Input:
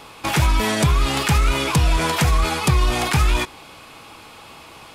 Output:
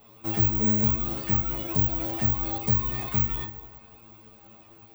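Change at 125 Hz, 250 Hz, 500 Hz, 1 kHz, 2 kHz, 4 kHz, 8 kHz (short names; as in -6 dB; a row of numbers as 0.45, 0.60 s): -8.5, -5.5, -12.0, -15.0, -18.5, -19.5, -19.5 dB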